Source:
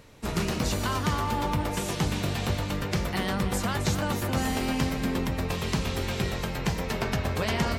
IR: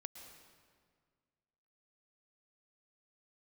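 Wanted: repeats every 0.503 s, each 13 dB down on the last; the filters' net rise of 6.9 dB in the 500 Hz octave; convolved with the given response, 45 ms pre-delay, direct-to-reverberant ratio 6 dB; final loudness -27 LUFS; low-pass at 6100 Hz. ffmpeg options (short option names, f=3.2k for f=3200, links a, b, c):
-filter_complex "[0:a]lowpass=6.1k,equalizer=f=500:t=o:g=8.5,aecho=1:1:503|1006|1509:0.224|0.0493|0.0108,asplit=2[a][b];[1:a]atrim=start_sample=2205,adelay=45[c];[b][c]afir=irnorm=-1:irlink=0,volume=-1.5dB[d];[a][d]amix=inputs=2:normalize=0,volume=-2dB"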